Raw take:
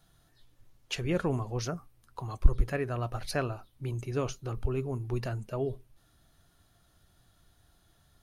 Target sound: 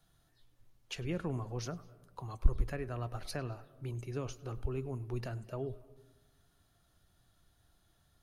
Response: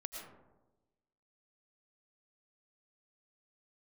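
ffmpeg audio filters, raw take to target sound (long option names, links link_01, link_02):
-filter_complex "[0:a]acrossover=split=270[link_01][link_02];[link_02]acompressor=threshold=-32dB:ratio=6[link_03];[link_01][link_03]amix=inputs=2:normalize=0,asplit=2[link_04][link_05];[1:a]atrim=start_sample=2205,lowpass=5400,adelay=101[link_06];[link_05][link_06]afir=irnorm=-1:irlink=0,volume=-16dB[link_07];[link_04][link_07]amix=inputs=2:normalize=0,volume=-5.5dB"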